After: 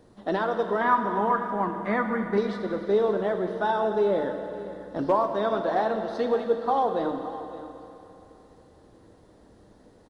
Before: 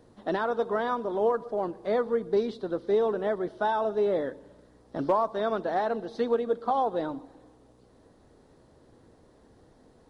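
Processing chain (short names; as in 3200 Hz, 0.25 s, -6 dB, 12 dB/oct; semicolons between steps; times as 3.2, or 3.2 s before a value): 0.81–2.38 graphic EQ 250/500/1000/2000/4000 Hz +7/-12/+7/+11/-10 dB; echo 0.563 s -16 dB; reverb RT60 3.2 s, pre-delay 5 ms, DRR 5.5 dB; gain +1.5 dB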